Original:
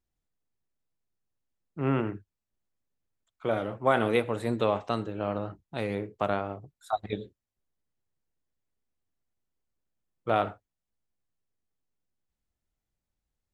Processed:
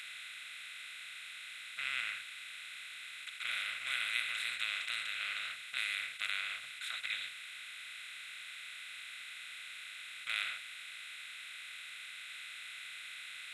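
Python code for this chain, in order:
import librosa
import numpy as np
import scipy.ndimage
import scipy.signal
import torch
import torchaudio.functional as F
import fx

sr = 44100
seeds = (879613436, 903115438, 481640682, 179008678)

y = fx.bin_compress(x, sr, power=0.2)
y = scipy.signal.sosfilt(scipy.signal.cheby2(4, 40, 1000.0, 'highpass', fs=sr, output='sos'), y)
y = F.gain(torch.from_numpy(y), -3.0).numpy()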